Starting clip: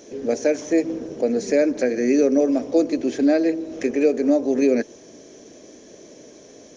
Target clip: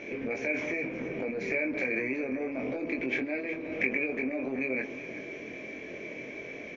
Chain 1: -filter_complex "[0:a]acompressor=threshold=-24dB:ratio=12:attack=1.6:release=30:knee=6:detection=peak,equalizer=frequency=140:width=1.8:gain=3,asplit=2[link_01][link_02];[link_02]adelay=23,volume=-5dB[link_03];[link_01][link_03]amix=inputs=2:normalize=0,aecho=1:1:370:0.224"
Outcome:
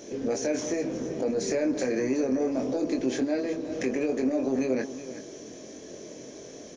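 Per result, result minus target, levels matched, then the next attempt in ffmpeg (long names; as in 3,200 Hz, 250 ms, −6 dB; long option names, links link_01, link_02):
2,000 Hz band −13.5 dB; downward compressor: peak gain reduction −7.5 dB
-filter_complex "[0:a]acompressor=threshold=-24dB:ratio=12:attack=1.6:release=30:knee=6:detection=peak,lowpass=frequency=2300:width_type=q:width=16,equalizer=frequency=140:width=1.8:gain=3,asplit=2[link_01][link_02];[link_02]adelay=23,volume=-5dB[link_03];[link_01][link_03]amix=inputs=2:normalize=0,aecho=1:1:370:0.224"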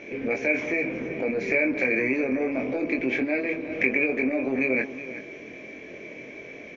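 downward compressor: peak gain reduction −7.5 dB
-filter_complex "[0:a]acompressor=threshold=-32dB:ratio=12:attack=1.6:release=30:knee=6:detection=peak,lowpass=frequency=2300:width_type=q:width=16,equalizer=frequency=140:width=1.8:gain=3,asplit=2[link_01][link_02];[link_02]adelay=23,volume=-5dB[link_03];[link_01][link_03]amix=inputs=2:normalize=0,aecho=1:1:370:0.224"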